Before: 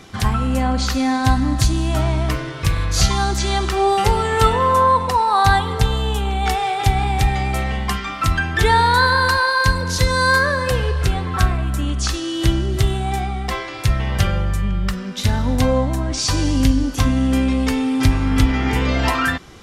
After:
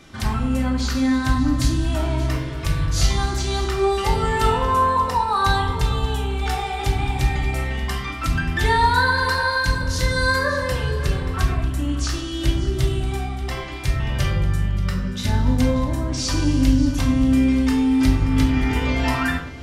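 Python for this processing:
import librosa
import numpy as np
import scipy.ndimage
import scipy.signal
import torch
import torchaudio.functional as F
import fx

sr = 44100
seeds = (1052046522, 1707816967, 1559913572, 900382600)

p1 = x + fx.echo_single(x, sr, ms=582, db=-15.5, dry=0)
p2 = fx.room_shoebox(p1, sr, seeds[0], volume_m3=770.0, walls='furnished', distance_m=2.6)
y = F.gain(torch.from_numpy(p2), -7.0).numpy()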